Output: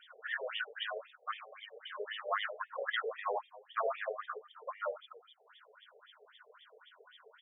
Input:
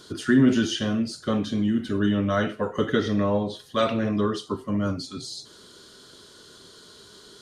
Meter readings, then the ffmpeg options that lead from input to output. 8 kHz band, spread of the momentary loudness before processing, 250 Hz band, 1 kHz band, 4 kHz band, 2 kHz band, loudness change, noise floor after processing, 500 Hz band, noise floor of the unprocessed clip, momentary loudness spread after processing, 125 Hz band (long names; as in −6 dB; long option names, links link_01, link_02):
below −40 dB, 10 LU, below −40 dB, −6.5 dB, −10.5 dB, −6.0 dB, −14.5 dB, −67 dBFS, −13.5 dB, −50 dBFS, 23 LU, below −40 dB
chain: -af "aecho=1:1:113:0.112,afftfilt=real='re*lt(hypot(re,im),0.355)':imag='im*lt(hypot(re,im),0.355)':win_size=1024:overlap=0.75,afftfilt=real='re*between(b*sr/1024,550*pow(2600/550,0.5+0.5*sin(2*PI*3.8*pts/sr))/1.41,550*pow(2600/550,0.5+0.5*sin(2*PI*3.8*pts/sr))*1.41)':imag='im*between(b*sr/1024,550*pow(2600/550,0.5+0.5*sin(2*PI*3.8*pts/sr))/1.41,550*pow(2600/550,0.5+0.5*sin(2*PI*3.8*pts/sr))*1.41)':win_size=1024:overlap=0.75"